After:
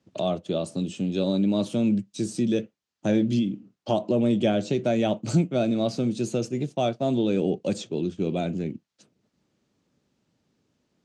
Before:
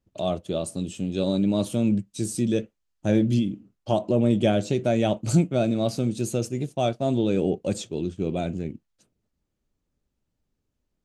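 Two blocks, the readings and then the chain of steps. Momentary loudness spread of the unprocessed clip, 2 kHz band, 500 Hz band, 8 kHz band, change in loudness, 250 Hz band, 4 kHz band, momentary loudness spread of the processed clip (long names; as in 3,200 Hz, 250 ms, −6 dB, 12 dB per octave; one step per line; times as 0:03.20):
9 LU, −0.5 dB, −0.5 dB, −5.0 dB, −0.5 dB, 0.0 dB, 0.0 dB, 7 LU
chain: Chebyshev band-pass filter 160–5,700 Hz, order 2
multiband upward and downward compressor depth 40%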